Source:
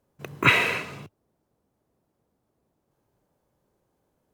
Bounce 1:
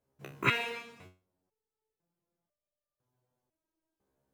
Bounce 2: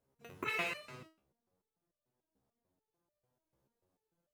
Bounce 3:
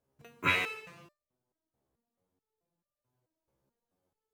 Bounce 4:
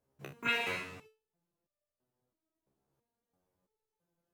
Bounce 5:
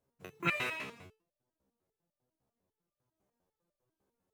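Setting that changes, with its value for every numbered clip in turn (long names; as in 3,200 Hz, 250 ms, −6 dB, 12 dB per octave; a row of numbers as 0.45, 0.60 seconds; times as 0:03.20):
step-sequenced resonator, speed: 2, 6.8, 4.6, 3, 10 Hertz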